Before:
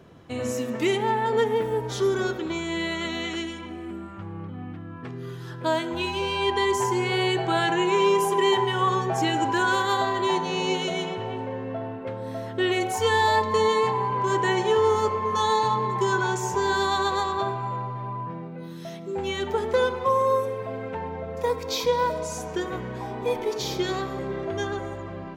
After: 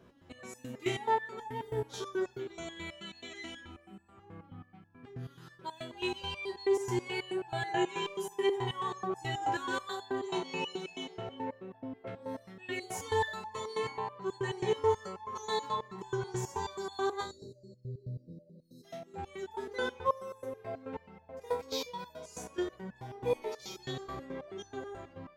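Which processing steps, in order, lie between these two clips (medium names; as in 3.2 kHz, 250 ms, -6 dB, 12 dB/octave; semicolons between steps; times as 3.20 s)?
spectral selection erased 17.22–18.84 s, 610–3800 Hz; resonator arpeggio 9.3 Hz 61–860 Hz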